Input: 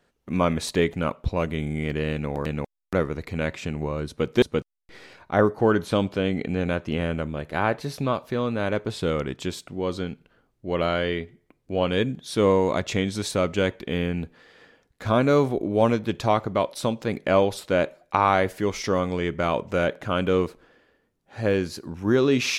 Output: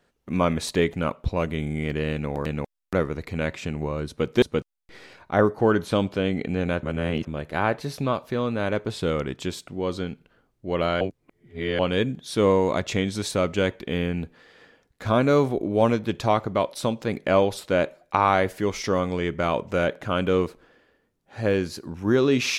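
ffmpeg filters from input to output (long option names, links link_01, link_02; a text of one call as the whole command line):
ffmpeg -i in.wav -filter_complex "[0:a]asplit=5[link_01][link_02][link_03][link_04][link_05];[link_01]atrim=end=6.832[link_06];[link_02]atrim=start=6.828:end=7.272,asetpts=PTS-STARTPTS,areverse[link_07];[link_03]atrim=start=7.268:end=11.012[link_08];[link_04]atrim=start=11.008:end=11.792,asetpts=PTS-STARTPTS,areverse[link_09];[link_05]atrim=start=11.788[link_10];[link_06][link_07]acrossfade=duration=0.004:curve1=hsin:curve2=hsin[link_11];[link_11][link_08]acrossfade=duration=0.004:curve1=hsin:curve2=hsin[link_12];[link_12][link_09]acrossfade=duration=0.004:curve1=hsin:curve2=hsin[link_13];[link_13][link_10]acrossfade=duration=0.004:curve1=hsin:curve2=hsin" out.wav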